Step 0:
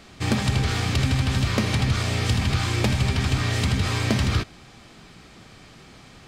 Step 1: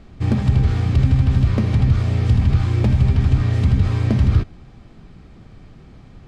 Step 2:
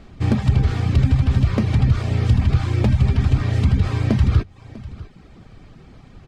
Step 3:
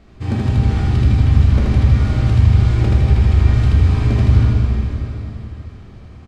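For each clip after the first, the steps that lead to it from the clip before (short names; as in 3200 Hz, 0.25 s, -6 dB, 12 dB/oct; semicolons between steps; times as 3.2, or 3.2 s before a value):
tilt -3.5 dB/oct; gain -4 dB
low shelf 340 Hz -3 dB; echo 0.647 s -18.5 dB; reverb removal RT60 0.57 s; gain +3 dB
on a send: loudspeakers at several distances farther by 11 m -12 dB, 27 m -2 dB; on the sum: plate-style reverb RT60 3.9 s, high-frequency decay 0.85×, DRR -2.5 dB; gain -5 dB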